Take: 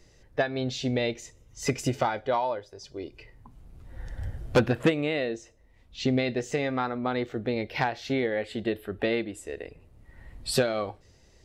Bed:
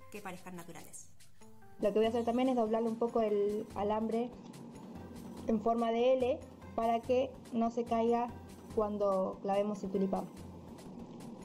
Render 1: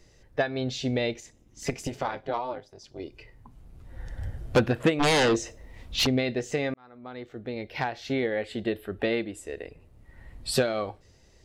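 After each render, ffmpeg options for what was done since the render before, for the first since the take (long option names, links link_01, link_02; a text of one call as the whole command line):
ffmpeg -i in.wav -filter_complex "[0:a]asettb=1/sr,asplit=3[link_01][link_02][link_03];[link_01]atrim=end=1.204[link_04];[link_02]atrim=start=1.2:end=3,asetpts=PTS-STARTPTS,afade=type=in:duration=0.004:curve=qsin,afade=type=out:start_time=1.796:duration=0.004:curve=qsin,tremolo=f=250:d=0.857[link_05];[link_03]atrim=start=2.996[link_06];[link_04][link_05]acrossfade=duration=0.004:curve1=hsin:curve2=qsin[link_07];[link_07][link_06]acrossfade=duration=0.004:curve1=qsin:curve2=hsin,asplit=3[link_08][link_09][link_10];[link_08]afade=type=out:start_time=4.99:duration=0.02[link_11];[link_09]aeval=exprs='0.126*sin(PI/2*3.16*val(0)/0.126)':channel_layout=same,afade=type=in:start_time=4.99:duration=0.02,afade=type=out:start_time=6.05:duration=0.02[link_12];[link_10]afade=type=in:start_time=6.05:duration=0.02[link_13];[link_11][link_12][link_13]amix=inputs=3:normalize=0,asplit=2[link_14][link_15];[link_14]atrim=end=6.74,asetpts=PTS-STARTPTS,afade=type=out:start_time=6.736:duration=0.004:curve=hsin[link_16];[link_15]atrim=start=6.74,asetpts=PTS-STARTPTS,afade=type=in:duration=1.5[link_17];[link_16][link_17]concat=n=2:v=0:a=1" out.wav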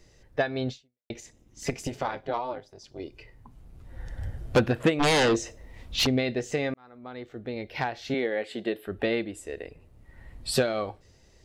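ffmpeg -i in.wav -filter_complex "[0:a]asettb=1/sr,asplit=3[link_01][link_02][link_03];[link_01]atrim=end=8.144[link_04];[link_02]atrim=start=8.14:end=8.87,asetpts=PTS-STARTPTS,afade=type=in:duration=0.004:curve=qsin,afade=type=out:start_time=0.726:duration=0.004:curve=qsin,highpass=230[link_05];[link_03]atrim=start=8.866[link_06];[link_04][link_05]acrossfade=duration=0.004:curve1=hsin:curve2=qsin[link_07];[link_07][link_06]acrossfade=duration=0.004:curve1=qsin:curve2=hsin,asplit=2[link_08][link_09];[link_08]atrim=end=1.1,asetpts=PTS-STARTPTS,afade=type=out:start_time=0.7:duration=0.4:curve=exp[link_10];[link_09]atrim=start=1.1,asetpts=PTS-STARTPTS,afade=type=in:duration=0.004:curve=hsin[link_11];[link_10][link_11]concat=n=2:v=0:a=1" out.wav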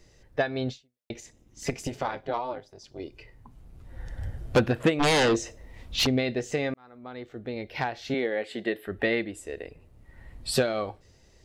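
ffmpeg -i in.wav -filter_complex "[0:a]asettb=1/sr,asplit=3[link_01][link_02][link_03];[link_01]atrim=end=8.544[link_04];[link_02]atrim=start=8.54:end=9.3,asetpts=PTS-STARTPTS,afade=type=in:duration=0.004:curve=qsin,afade=type=out:start_time=0.756:duration=0.004:curve=qsin,equalizer=frequency=1900:width=4.2:gain=7.5[link_05];[link_03]atrim=start=9.296[link_06];[link_04][link_05]acrossfade=duration=0.004:curve1=hsin:curve2=qsin[link_07];[link_07][link_06]acrossfade=duration=0.004:curve1=qsin:curve2=hsin" out.wav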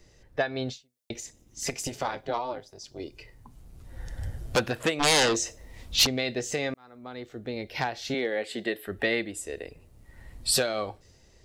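ffmpeg -i in.wav -filter_complex "[0:a]acrossover=split=510|4300[link_01][link_02][link_03];[link_01]alimiter=level_in=0.5dB:limit=-24dB:level=0:latency=1:release=369,volume=-0.5dB[link_04];[link_03]dynaudnorm=framelen=150:gausssize=9:maxgain=8.5dB[link_05];[link_04][link_02][link_05]amix=inputs=3:normalize=0" out.wav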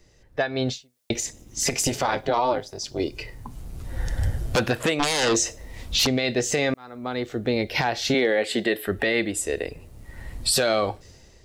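ffmpeg -i in.wav -af "dynaudnorm=framelen=260:gausssize=5:maxgain=12.5dB,alimiter=limit=-12dB:level=0:latency=1:release=32" out.wav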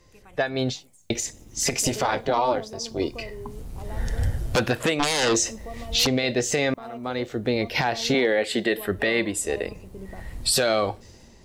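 ffmpeg -i in.wav -i bed.wav -filter_complex "[1:a]volume=-8dB[link_01];[0:a][link_01]amix=inputs=2:normalize=0" out.wav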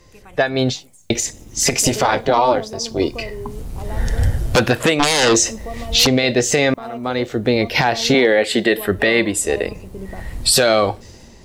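ffmpeg -i in.wav -af "volume=7.5dB" out.wav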